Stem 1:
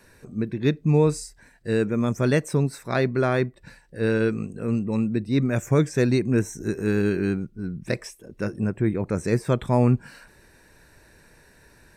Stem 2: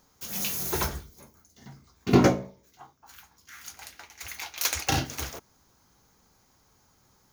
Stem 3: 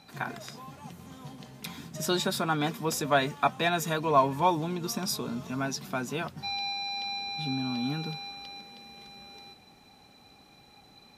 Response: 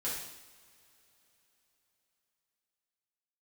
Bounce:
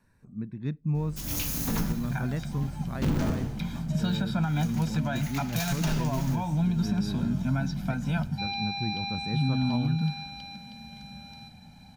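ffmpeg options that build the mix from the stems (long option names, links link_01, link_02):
-filter_complex "[0:a]equalizer=frequency=940:width=1.1:gain=8,volume=-19dB[link_01];[1:a]asoftclip=type=tanh:threshold=-17.5dB,aeval=exprs='val(0)+0.00398*(sin(2*PI*50*n/s)+sin(2*PI*2*50*n/s)/2+sin(2*PI*3*50*n/s)/3+sin(2*PI*4*50*n/s)/4+sin(2*PI*5*50*n/s)/5)':channel_layout=same,aeval=exprs='val(0)*sgn(sin(2*PI*100*n/s))':channel_layout=same,adelay=950,volume=-3.5dB,asplit=2[link_02][link_03];[link_03]volume=-7.5dB[link_04];[2:a]acrossover=split=4900[link_05][link_06];[link_06]acompressor=threshold=-53dB:ratio=4:attack=1:release=60[link_07];[link_05][link_07]amix=inputs=2:normalize=0,aecho=1:1:1.3:0.92,adelay=1950,volume=-3.5dB,asplit=2[link_08][link_09];[link_09]volume=-23dB[link_10];[link_02][link_08]amix=inputs=2:normalize=0,alimiter=limit=-22.5dB:level=0:latency=1:release=287,volume=0dB[link_11];[3:a]atrim=start_sample=2205[link_12];[link_04][link_10]amix=inputs=2:normalize=0[link_13];[link_13][link_12]afir=irnorm=-1:irlink=0[link_14];[link_01][link_11][link_14]amix=inputs=3:normalize=0,lowshelf=frequency=290:width_type=q:width=1.5:gain=10,alimiter=limit=-18dB:level=0:latency=1:release=148"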